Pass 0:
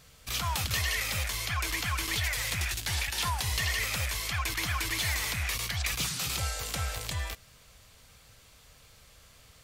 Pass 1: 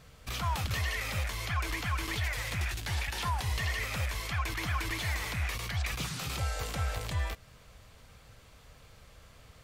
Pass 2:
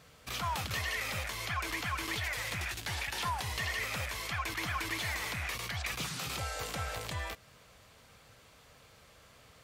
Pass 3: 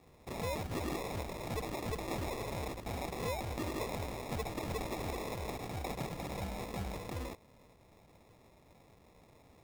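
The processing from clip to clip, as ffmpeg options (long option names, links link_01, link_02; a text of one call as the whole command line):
ffmpeg -i in.wav -af "alimiter=level_in=1dB:limit=-24dB:level=0:latency=1:release=155,volume=-1dB,highshelf=frequency=2700:gain=-11,volume=4dB" out.wav
ffmpeg -i in.wav -af "highpass=frequency=190:poles=1" out.wav
ffmpeg -i in.wav -af "acrusher=samples=29:mix=1:aa=0.000001,volume=-2.5dB" out.wav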